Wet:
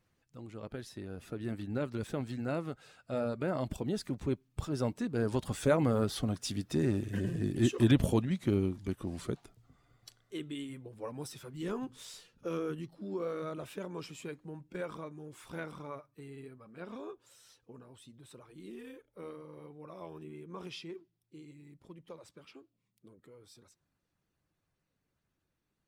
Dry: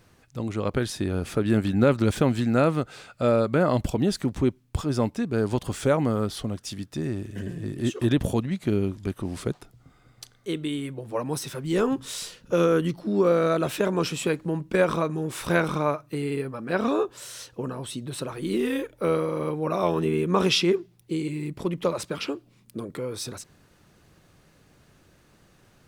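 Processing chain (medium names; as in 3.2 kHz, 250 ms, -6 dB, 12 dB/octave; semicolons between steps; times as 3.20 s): coarse spectral quantiser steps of 15 dB; Doppler pass-by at 7.08 s, 12 m/s, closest 12 m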